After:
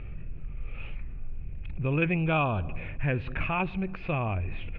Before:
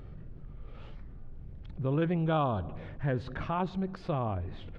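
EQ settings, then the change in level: synth low-pass 2500 Hz, resonance Q 13; low shelf 77 Hz +11.5 dB; 0.0 dB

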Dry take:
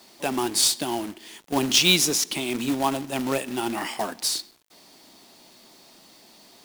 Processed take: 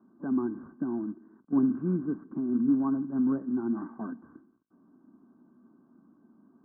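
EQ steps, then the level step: HPF 140 Hz 6 dB/oct; rippled Chebyshev low-pass 1600 Hz, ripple 9 dB; resonant low shelf 340 Hz +11 dB, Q 3; -7.0 dB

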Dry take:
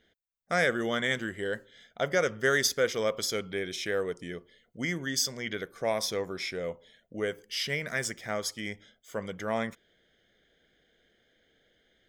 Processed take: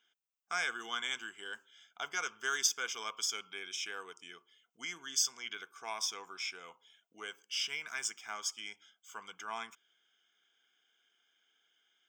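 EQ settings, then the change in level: dynamic EQ 1300 Hz, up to -4 dB, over -47 dBFS, Q 5.5; HPF 780 Hz 12 dB/oct; fixed phaser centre 2800 Hz, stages 8; 0.0 dB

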